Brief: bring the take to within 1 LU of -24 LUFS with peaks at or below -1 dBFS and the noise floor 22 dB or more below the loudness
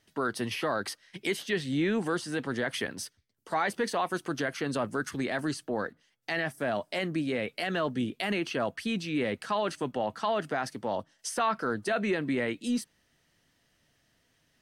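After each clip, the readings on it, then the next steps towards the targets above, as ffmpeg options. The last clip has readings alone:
loudness -31.5 LUFS; peak -16.5 dBFS; loudness target -24.0 LUFS
-> -af "volume=7.5dB"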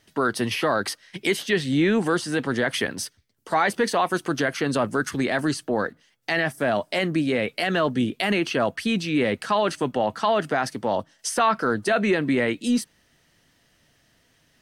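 loudness -24.0 LUFS; peak -9.0 dBFS; noise floor -64 dBFS

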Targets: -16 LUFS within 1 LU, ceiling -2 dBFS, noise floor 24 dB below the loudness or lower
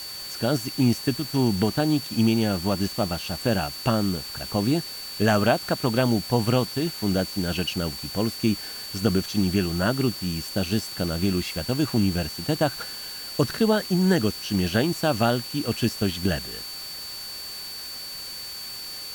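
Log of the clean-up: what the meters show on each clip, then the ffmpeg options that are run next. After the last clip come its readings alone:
steady tone 4500 Hz; tone level -35 dBFS; noise floor -36 dBFS; noise floor target -49 dBFS; loudness -25.0 LUFS; peak -7.5 dBFS; loudness target -16.0 LUFS
-> -af "bandreject=f=4.5k:w=30"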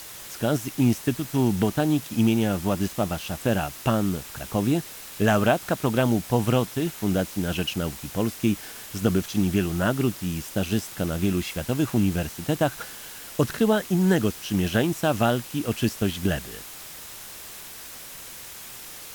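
steady tone none; noise floor -41 dBFS; noise floor target -49 dBFS
-> -af "afftdn=nr=8:nf=-41"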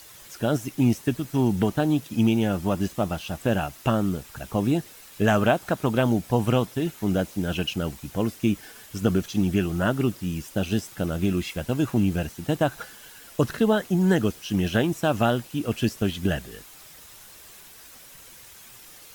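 noise floor -47 dBFS; noise floor target -49 dBFS
-> -af "afftdn=nr=6:nf=-47"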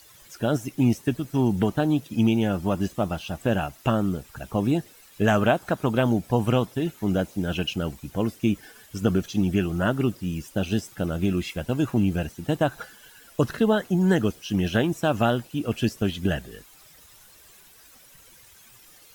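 noise floor -52 dBFS; loudness -25.0 LUFS; peak -8.0 dBFS; loudness target -16.0 LUFS
-> -af "volume=9dB,alimiter=limit=-2dB:level=0:latency=1"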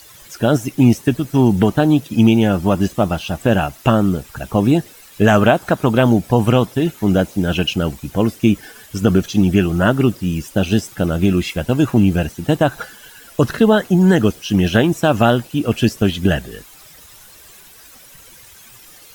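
loudness -16.5 LUFS; peak -2.0 dBFS; noise floor -43 dBFS

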